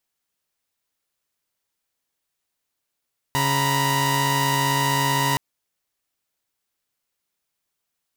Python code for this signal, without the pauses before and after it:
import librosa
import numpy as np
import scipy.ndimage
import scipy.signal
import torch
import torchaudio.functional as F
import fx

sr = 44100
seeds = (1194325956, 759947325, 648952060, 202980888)

y = fx.chord(sr, length_s=2.02, notes=(49, 82, 83), wave='saw', level_db=-21.0)